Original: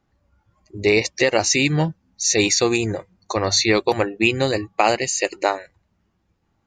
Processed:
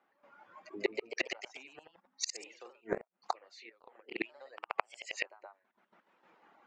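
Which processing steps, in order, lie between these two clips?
high-pass filter 210 Hz 24 dB per octave
three-way crossover with the lows and the highs turned down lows −15 dB, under 480 Hz, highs −21 dB, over 2,900 Hz
downward compressor 6 to 1, threshold −23 dBFS, peak gain reduction 9.5 dB
gate pattern "...xxxxxx...x" 195 BPM −12 dB
gate with flip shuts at −32 dBFS, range −38 dB
reverb reduction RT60 1 s
delay with pitch and tempo change per echo 183 ms, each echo +1 semitone, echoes 3, each echo −6 dB
level +14 dB

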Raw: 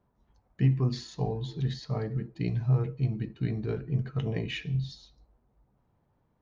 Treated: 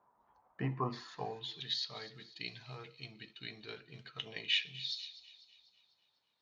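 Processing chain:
band-pass filter sweep 1,000 Hz → 3,700 Hz, 0:00.96–0:01.66
delay with a high-pass on its return 248 ms, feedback 50%, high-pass 2,700 Hz, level −15 dB
level +10.5 dB

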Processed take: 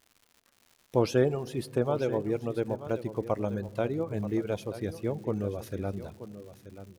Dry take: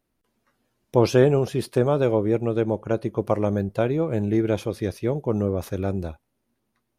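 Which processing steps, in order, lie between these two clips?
reverb reduction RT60 0.91 s
surface crackle 200 per second −39 dBFS
single-tap delay 932 ms −13 dB
on a send at −20.5 dB: convolution reverb RT60 3.5 s, pre-delay 3 ms
on the sum: level −6.5 dB

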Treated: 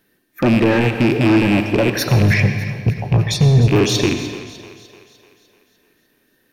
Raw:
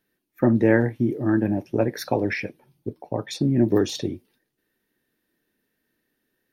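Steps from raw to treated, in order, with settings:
loose part that buzzes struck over −31 dBFS, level −20 dBFS
0:02.06–0:03.68: low shelf with overshoot 220 Hz +12 dB, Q 3
in parallel at 0 dB: downward compressor, threshold −21 dBFS, peak gain reduction 15.5 dB
on the sum: brickwall limiter −6.5 dBFS, peak gain reduction 7.5 dB
soft clipping −15.5 dBFS, distortion −10 dB
echo with a time of its own for lows and highs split 360 Hz, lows 179 ms, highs 300 ms, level −15 dB
on a send at −7.5 dB: convolution reverb RT60 1.4 s, pre-delay 77 ms
on the sum: level +6.5 dB

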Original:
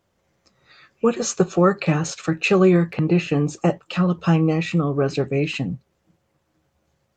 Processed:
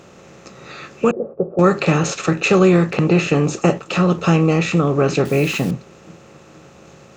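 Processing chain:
compressor on every frequency bin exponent 0.6
0:01.11–0:01.59: transistor ladder low-pass 640 Hz, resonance 55%
0:05.25–0:05.71: bit-depth reduction 6 bits, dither none
level +1 dB

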